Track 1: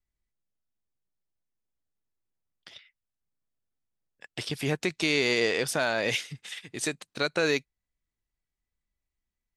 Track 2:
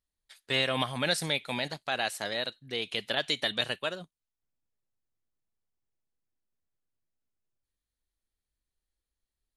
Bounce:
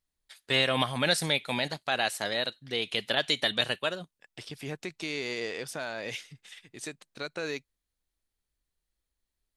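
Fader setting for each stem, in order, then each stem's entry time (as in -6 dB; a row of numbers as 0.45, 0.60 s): -9.0, +2.5 dB; 0.00, 0.00 s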